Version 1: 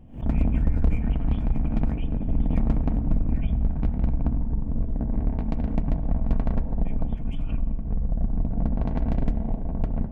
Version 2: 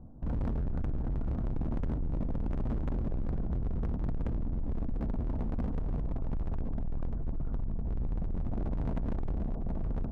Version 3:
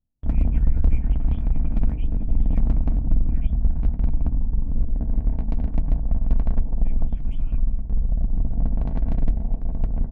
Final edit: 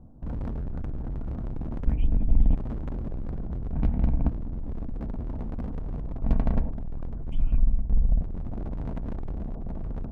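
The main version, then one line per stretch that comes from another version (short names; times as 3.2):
2
1.87–2.55 from 3
3.73–4.29 from 1
6.23–6.7 from 1
7.32–8.21 from 3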